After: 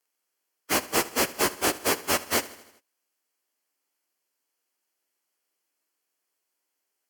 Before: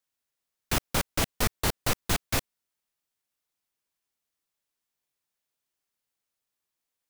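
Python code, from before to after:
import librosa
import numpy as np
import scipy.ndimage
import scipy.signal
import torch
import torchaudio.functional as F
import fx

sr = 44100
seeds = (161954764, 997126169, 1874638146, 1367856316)

y = fx.pitch_bins(x, sr, semitones=-3.0)
y = scipy.signal.sosfilt(scipy.signal.butter(2, 100.0, 'highpass', fs=sr, output='sos'), y)
y = fx.low_shelf_res(y, sr, hz=220.0, db=-10.5, q=1.5)
y = fx.notch(y, sr, hz=3700.0, q=5.1)
y = fx.echo_feedback(y, sr, ms=79, feedback_pct=57, wet_db=-18)
y = y * librosa.db_to_amplitude(7.5)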